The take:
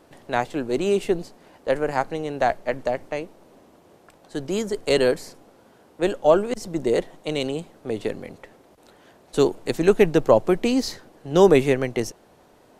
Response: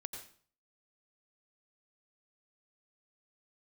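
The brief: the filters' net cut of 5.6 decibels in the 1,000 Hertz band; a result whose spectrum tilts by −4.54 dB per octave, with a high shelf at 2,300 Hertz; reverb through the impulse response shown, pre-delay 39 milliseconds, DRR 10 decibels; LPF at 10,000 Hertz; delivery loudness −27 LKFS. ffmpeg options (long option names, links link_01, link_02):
-filter_complex "[0:a]lowpass=10000,equalizer=frequency=1000:width_type=o:gain=-9,highshelf=frequency=2300:gain=4,asplit=2[link_01][link_02];[1:a]atrim=start_sample=2205,adelay=39[link_03];[link_02][link_03]afir=irnorm=-1:irlink=0,volume=-7.5dB[link_04];[link_01][link_04]amix=inputs=2:normalize=0,volume=-3.5dB"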